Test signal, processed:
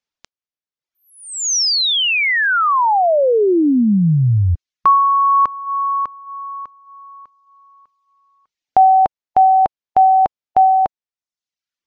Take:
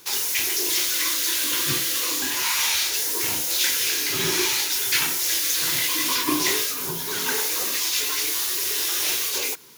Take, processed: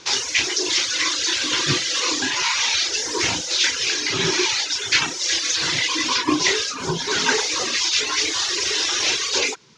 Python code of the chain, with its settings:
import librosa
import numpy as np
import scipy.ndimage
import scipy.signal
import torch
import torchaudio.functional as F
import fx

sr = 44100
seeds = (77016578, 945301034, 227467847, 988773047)

y = fx.dereverb_blind(x, sr, rt60_s=0.86)
y = scipy.signal.sosfilt(scipy.signal.butter(6, 6500.0, 'lowpass', fs=sr, output='sos'), y)
y = fx.rider(y, sr, range_db=3, speed_s=0.5)
y = F.gain(torch.from_numpy(y), 7.0).numpy()